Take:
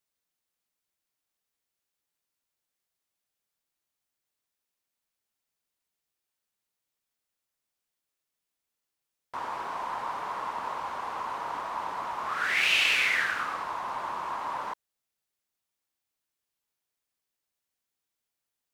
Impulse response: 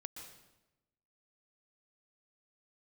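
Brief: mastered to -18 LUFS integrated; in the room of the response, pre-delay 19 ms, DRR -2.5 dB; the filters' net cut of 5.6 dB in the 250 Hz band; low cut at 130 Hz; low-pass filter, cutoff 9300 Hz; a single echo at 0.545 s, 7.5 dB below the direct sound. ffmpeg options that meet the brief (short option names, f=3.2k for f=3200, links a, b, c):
-filter_complex "[0:a]highpass=130,lowpass=9.3k,equalizer=f=250:t=o:g=-7.5,aecho=1:1:545:0.422,asplit=2[a][b];[1:a]atrim=start_sample=2205,adelay=19[c];[b][c]afir=irnorm=-1:irlink=0,volume=6.5dB[d];[a][d]amix=inputs=2:normalize=0,volume=6dB"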